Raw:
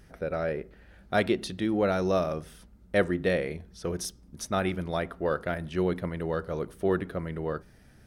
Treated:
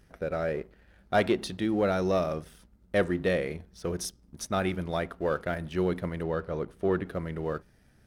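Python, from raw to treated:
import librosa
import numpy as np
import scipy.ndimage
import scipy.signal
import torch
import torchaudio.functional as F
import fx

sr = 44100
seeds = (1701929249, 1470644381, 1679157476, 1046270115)

y = fx.dynamic_eq(x, sr, hz=840.0, q=0.82, threshold_db=-38.0, ratio=4.0, max_db=4, at=(0.52, 1.57))
y = fx.leveller(y, sr, passes=1)
y = fx.lowpass(y, sr, hz=3500.0, slope=6, at=(6.23, 7.06))
y = y * 10.0 ** (-4.0 / 20.0)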